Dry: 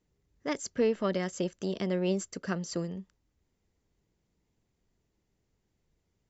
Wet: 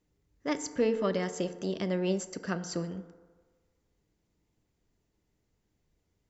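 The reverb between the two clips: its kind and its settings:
feedback delay network reverb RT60 1.5 s, low-frequency decay 0.7×, high-frequency decay 0.35×, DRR 10 dB

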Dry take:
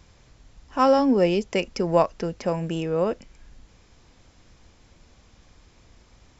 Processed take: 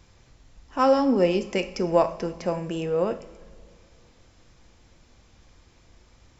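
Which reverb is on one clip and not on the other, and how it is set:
coupled-rooms reverb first 0.54 s, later 2.5 s, from −16 dB, DRR 8 dB
level −2 dB

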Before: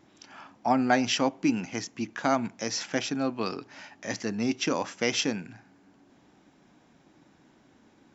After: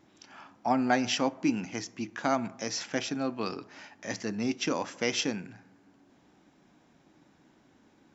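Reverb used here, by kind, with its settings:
dense smooth reverb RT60 0.98 s, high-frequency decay 0.35×, DRR 17.5 dB
level −2.5 dB

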